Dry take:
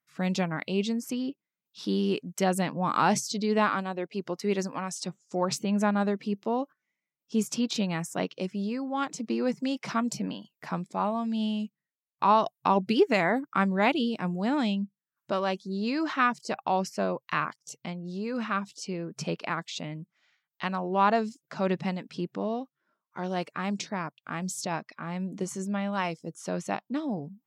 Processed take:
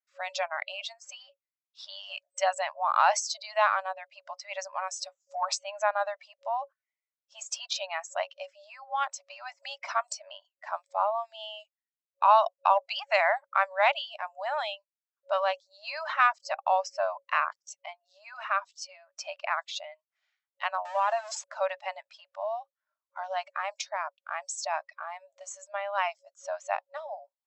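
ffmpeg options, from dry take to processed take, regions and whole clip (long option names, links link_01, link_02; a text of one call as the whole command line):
ffmpeg -i in.wav -filter_complex "[0:a]asettb=1/sr,asplit=3[link_01][link_02][link_03];[link_01]atrim=end=20.854[link_04];[link_02]atrim=start=20.85:end=21.44,asetpts=PTS-STARTPTS,afade=type=in:duration=0.004:curve=qsin,afade=type=out:start_time=0.586:duration=0.004:curve=qsin,aeval=exprs='val(0)+0.5*0.0376*sgn(val(0))':channel_layout=same,acompressor=threshold=-25dB:ratio=3:attack=3.2:release=140:knee=1:detection=peak[link_05];[link_03]atrim=start=21.436[link_06];[link_04][link_05]acrossfade=duration=0.004:curve1=hsin:curve2=qsin[link_07];[link_07][link_06]acrossfade=duration=0.004:curve1=qsin:curve2=hsin,afftdn=noise_reduction=13:noise_floor=-39,acontrast=25,afftfilt=real='re*between(b*sr/4096,550,8100)':imag='im*between(b*sr/4096,550,8100)':win_size=4096:overlap=0.75,volume=-2.5dB" out.wav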